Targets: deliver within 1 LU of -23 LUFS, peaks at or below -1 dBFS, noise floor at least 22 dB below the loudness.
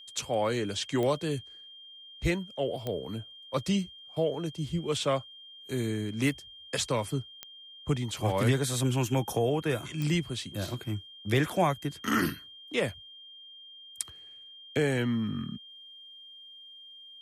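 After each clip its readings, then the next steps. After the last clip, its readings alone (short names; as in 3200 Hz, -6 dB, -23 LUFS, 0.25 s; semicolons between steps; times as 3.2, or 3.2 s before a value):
clicks 4; steady tone 3200 Hz; tone level -47 dBFS; loudness -31.0 LUFS; peak -11.5 dBFS; loudness target -23.0 LUFS
-> de-click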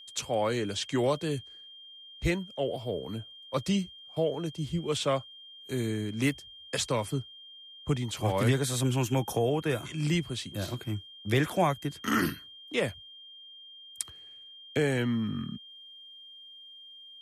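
clicks 0; steady tone 3200 Hz; tone level -47 dBFS
-> notch 3200 Hz, Q 30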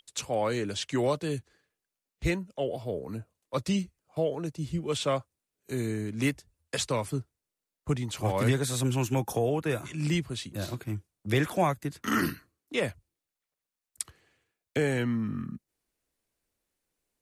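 steady tone none; loudness -31.0 LUFS; peak -11.5 dBFS; loudness target -23.0 LUFS
-> gain +8 dB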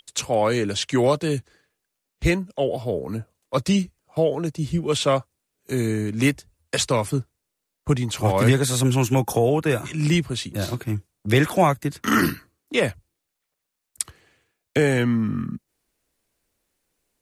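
loudness -23.0 LUFS; peak -3.5 dBFS; noise floor -81 dBFS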